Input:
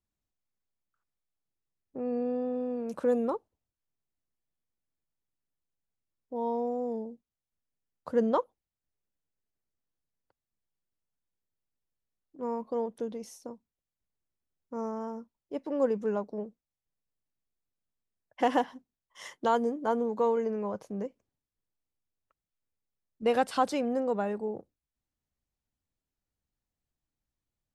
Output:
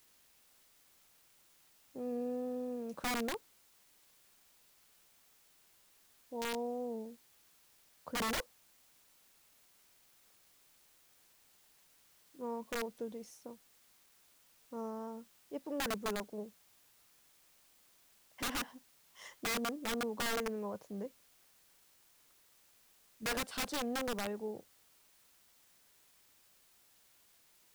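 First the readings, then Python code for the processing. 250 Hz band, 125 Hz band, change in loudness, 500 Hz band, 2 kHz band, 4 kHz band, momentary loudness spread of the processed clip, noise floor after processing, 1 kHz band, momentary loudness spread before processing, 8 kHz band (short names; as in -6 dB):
-8.5 dB, n/a, -8.0 dB, -11.0 dB, +2.0 dB, +5.5 dB, 15 LU, -68 dBFS, -10.0 dB, 15 LU, +8.5 dB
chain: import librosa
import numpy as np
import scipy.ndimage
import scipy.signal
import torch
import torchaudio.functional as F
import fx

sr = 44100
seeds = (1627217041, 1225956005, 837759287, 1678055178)

y = (np.mod(10.0 ** (23.5 / 20.0) * x + 1.0, 2.0) - 1.0) / 10.0 ** (23.5 / 20.0)
y = fx.quant_dither(y, sr, seeds[0], bits=10, dither='triangular')
y = F.gain(torch.from_numpy(y), -7.0).numpy()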